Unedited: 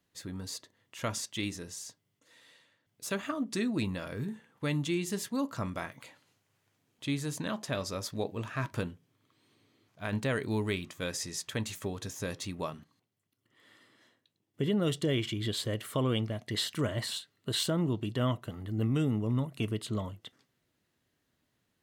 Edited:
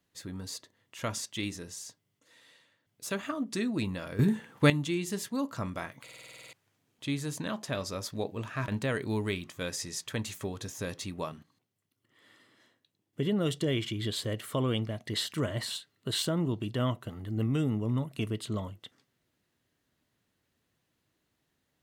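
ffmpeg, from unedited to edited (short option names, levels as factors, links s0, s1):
-filter_complex "[0:a]asplit=14[s0][s1][s2][s3][s4][s5][s6][s7][s8][s9][s10][s11][s12][s13];[s0]atrim=end=4.192[s14];[s1]atrim=start=4.188:end=4.702,asetpts=PTS-STARTPTS,volume=3.76[s15];[s2]atrim=start=4.698:end=6.082[s16];[s3]atrim=start=6.028:end=6.082[s17];[s4]atrim=start=6.028:end=6.082[s18];[s5]atrim=start=6.028:end=6.082[s19];[s6]atrim=start=6.028:end=6.082[s20];[s7]atrim=start=6.028:end=6.082[s21];[s8]atrim=start=6.028:end=6.082[s22];[s9]atrim=start=6.028:end=6.082[s23];[s10]atrim=start=6.028:end=6.082[s24];[s11]atrim=start=6.028:end=6.082[s25];[s12]atrim=start=6.528:end=8.682[s26];[s13]atrim=start=10.088[s27];[s14][s15]acrossfade=d=0.004:c1=hsin:c2=hsin[s28];[s28][s16]acrossfade=d=0.004:c1=hsin:c2=hsin[s29];[s29][s17]acrossfade=d=0.004:c1=hsin:c2=hsin[s30];[s30][s18]acrossfade=d=0.004:c1=hsin:c2=hsin[s31];[s31][s19]acrossfade=d=0.004:c1=hsin:c2=hsin[s32];[s32][s20]acrossfade=d=0.004:c1=hsin:c2=hsin[s33];[s33][s21]acrossfade=d=0.004:c1=hsin:c2=hsin[s34];[s34][s22]acrossfade=d=0.004:c1=hsin:c2=hsin[s35];[s35][s23]acrossfade=d=0.004:c1=hsin:c2=hsin[s36];[s36][s24]acrossfade=d=0.004:c1=hsin:c2=hsin[s37];[s37][s25]acrossfade=d=0.004:c1=hsin:c2=hsin[s38];[s38][s26]acrossfade=d=0.004:c1=hsin:c2=hsin[s39];[s39][s27]acrossfade=d=0.004:c1=hsin:c2=hsin"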